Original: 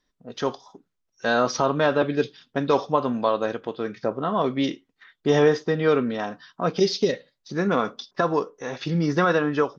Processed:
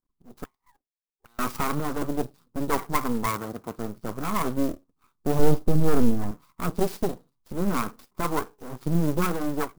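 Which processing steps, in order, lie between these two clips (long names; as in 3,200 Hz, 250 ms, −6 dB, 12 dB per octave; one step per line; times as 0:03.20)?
Chebyshev band-stop filter 1,200–3,500 Hz, order 3
high-shelf EQ 2,300 Hz −7.5 dB
phaser with its sweep stopped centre 1,400 Hz, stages 4
automatic gain control gain up to 7 dB
0:00.44–0:01.39: envelope filter 420–3,000 Hz, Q 14, up, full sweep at −26.5 dBFS
half-wave rectification
0:03.26–0:03.79: high-pass filter 60 Hz
0:05.39–0:06.31: spectral tilt −2.5 dB per octave
converter with an unsteady clock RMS 0.045 ms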